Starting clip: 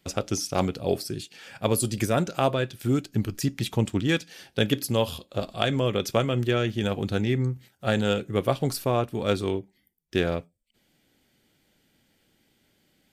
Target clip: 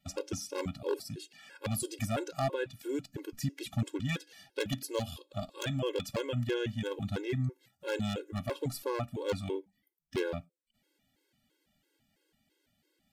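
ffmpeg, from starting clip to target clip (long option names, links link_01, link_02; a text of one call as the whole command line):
ffmpeg -i in.wav -af "aeval=exprs='0.178*(abs(mod(val(0)/0.178+3,4)-2)-1)':channel_layout=same,afftfilt=real='re*gt(sin(2*PI*3*pts/sr)*(1-2*mod(floor(b*sr/1024/280),2)),0)':imag='im*gt(sin(2*PI*3*pts/sr)*(1-2*mod(floor(b*sr/1024/280),2)),0)':win_size=1024:overlap=0.75,volume=-5.5dB" out.wav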